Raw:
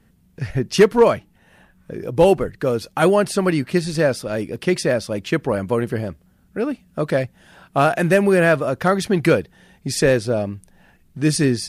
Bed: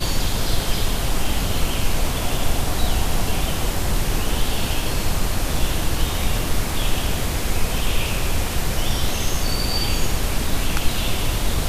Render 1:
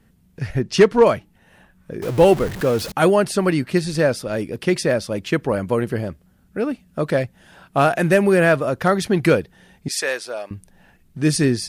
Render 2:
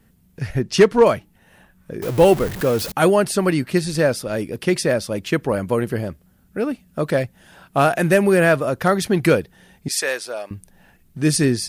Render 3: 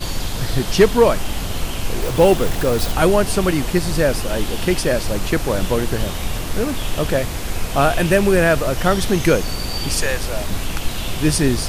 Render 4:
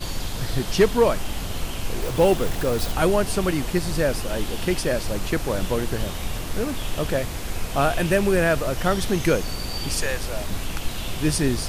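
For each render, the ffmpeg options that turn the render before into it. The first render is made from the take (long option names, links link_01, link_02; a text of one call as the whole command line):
ffmpeg -i in.wav -filter_complex "[0:a]asettb=1/sr,asplit=3[link_01][link_02][link_03];[link_01]atrim=end=0.624[link_04];[link_02]atrim=start=0.62:end=1.06,asetpts=PTS-STARTPTS,afade=type=in:duration=0.004:curve=qsin,afade=type=out:start_time=0.436:duration=0.004:curve=qsin,lowpass=7900[link_05];[link_03]atrim=start=1.056[link_06];[link_04][link_05]acrossfade=duration=0.004:curve1=hsin:curve2=qsin[link_07];[link_07][link_06]acrossfade=duration=0.004:curve1=qsin:curve2=hsin,asettb=1/sr,asplit=3[link_08][link_09][link_10];[link_08]atrim=end=2.024[link_11];[link_09]atrim=start=2.02:end=2.92,asetpts=PTS-STARTPTS,afade=type=in:duration=0.004:curve=qsin,afade=type=out:start_time=0.896:duration=0.004:curve=qsin,aeval=exprs='val(0)+0.5*0.0501*sgn(val(0))':channel_layout=same[link_12];[link_10]atrim=start=2.916[link_13];[link_11][link_12]acrossfade=duration=0.004:curve1=hsin:curve2=qsin[link_14];[link_14][link_13]acrossfade=duration=0.004:curve1=qsin:curve2=hsin,asettb=1/sr,asplit=3[link_15][link_16][link_17];[link_15]atrim=end=9.884[link_18];[link_16]atrim=start=9.88:end=10.51,asetpts=PTS-STARTPTS,afade=type=in:duration=0.004:curve=qsin,afade=type=out:start_time=0.626:duration=0.004:curve=qsin,highpass=830[link_19];[link_17]atrim=start=10.506[link_20];[link_18][link_19]acrossfade=duration=0.004:curve1=hsin:curve2=qsin[link_21];[link_21][link_20]acrossfade=duration=0.004:curve1=qsin:curve2=hsin" out.wav
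ffmpeg -i in.wav -af "highshelf=frequency=11000:gain=9.5" out.wav
ffmpeg -i in.wav -i bed.wav -filter_complex "[1:a]volume=-2.5dB[link_01];[0:a][link_01]amix=inputs=2:normalize=0" out.wav
ffmpeg -i in.wav -af "volume=-5dB" out.wav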